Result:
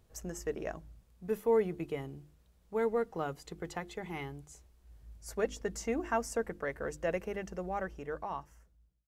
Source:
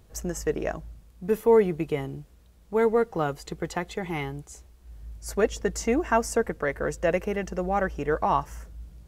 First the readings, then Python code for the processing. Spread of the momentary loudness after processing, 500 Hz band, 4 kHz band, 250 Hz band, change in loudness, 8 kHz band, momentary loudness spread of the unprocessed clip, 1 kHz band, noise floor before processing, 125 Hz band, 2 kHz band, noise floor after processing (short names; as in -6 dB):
13 LU, -9.0 dB, -9.0 dB, -10.0 dB, -9.5 dB, -9.0 dB, 17 LU, -10.5 dB, -55 dBFS, -10.5 dB, -9.5 dB, -67 dBFS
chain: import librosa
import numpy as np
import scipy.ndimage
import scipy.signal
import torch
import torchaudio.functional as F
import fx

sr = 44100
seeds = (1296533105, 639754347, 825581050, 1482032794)

y = fx.fade_out_tail(x, sr, length_s=1.58)
y = fx.hum_notches(y, sr, base_hz=50, count=7)
y = y * 10.0 ** (-9.0 / 20.0)